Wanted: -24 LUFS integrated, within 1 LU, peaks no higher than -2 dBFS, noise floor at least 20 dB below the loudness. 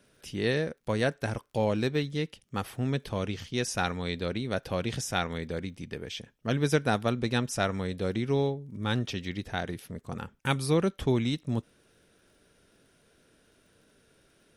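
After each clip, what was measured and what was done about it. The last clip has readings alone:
ticks 20/s; loudness -31.0 LUFS; peak -9.5 dBFS; loudness target -24.0 LUFS
-> de-click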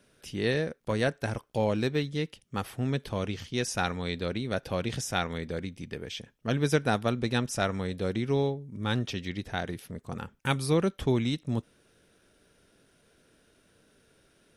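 ticks 0/s; loudness -31.0 LUFS; peak -9.5 dBFS; loudness target -24.0 LUFS
-> gain +7 dB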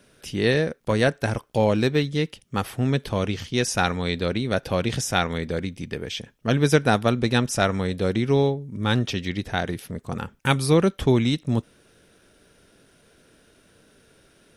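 loudness -24.0 LUFS; peak -2.5 dBFS; noise floor -59 dBFS

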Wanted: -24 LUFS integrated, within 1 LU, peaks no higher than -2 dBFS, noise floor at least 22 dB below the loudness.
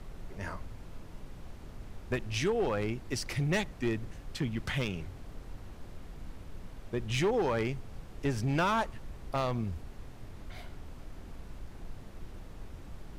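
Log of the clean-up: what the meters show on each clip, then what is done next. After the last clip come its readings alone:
clipped 0.9%; flat tops at -23.5 dBFS; noise floor -48 dBFS; noise floor target -55 dBFS; loudness -33.0 LUFS; peak -23.5 dBFS; loudness target -24.0 LUFS
-> clip repair -23.5 dBFS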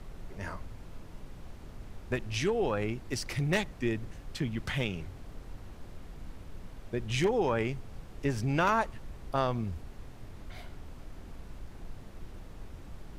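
clipped 0.0%; noise floor -48 dBFS; noise floor target -55 dBFS
-> noise print and reduce 7 dB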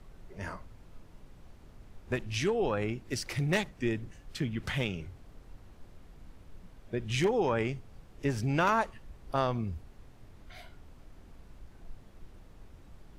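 noise floor -55 dBFS; loudness -32.5 LUFS; peak -14.5 dBFS; loudness target -24.0 LUFS
-> gain +8.5 dB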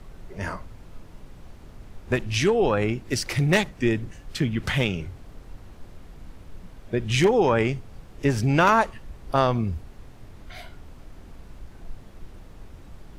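loudness -24.0 LUFS; peak -6.0 dBFS; noise floor -46 dBFS

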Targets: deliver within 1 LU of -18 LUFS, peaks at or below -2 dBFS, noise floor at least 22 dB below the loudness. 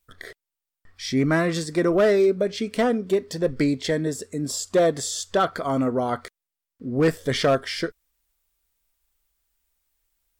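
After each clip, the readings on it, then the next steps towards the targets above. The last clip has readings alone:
clipped 0.6%; flat tops at -13.0 dBFS; loudness -23.5 LUFS; peak -13.0 dBFS; loudness target -18.0 LUFS
-> clip repair -13 dBFS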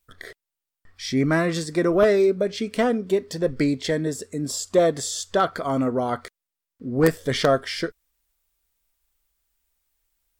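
clipped 0.0%; loudness -23.0 LUFS; peak -4.0 dBFS; loudness target -18.0 LUFS
-> gain +5 dB; limiter -2 dBFS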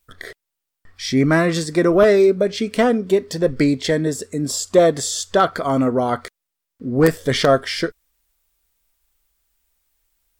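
loudness -18.0 LUFS; peak -2.0 dBFS; noise floor -81 dBFS

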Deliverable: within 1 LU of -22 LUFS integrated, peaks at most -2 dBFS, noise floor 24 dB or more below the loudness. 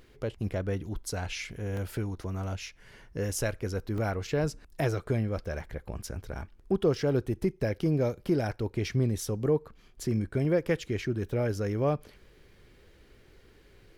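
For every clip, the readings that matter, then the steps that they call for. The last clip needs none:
dropouts 3; longest dropout 1.8 ms; loudness -31.0 LUFS; peak -14.5 dBFS; loudness target -22.0 LUFS
-> interpolate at 1.77/3.98/10.45, 1.8 ms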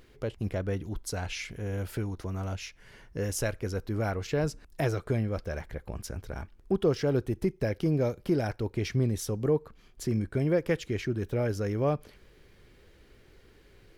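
dropouts 0; loudness -31.0 LUFS; peak -14.5 dBFS; loudness target -22.0 LUFS
-> gain +9 dB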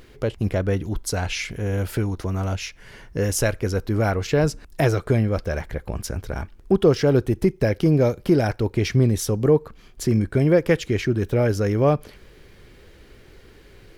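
loudness -22.0 LUFS; peak -5.5 dBFS; noise floor -49 dBFS

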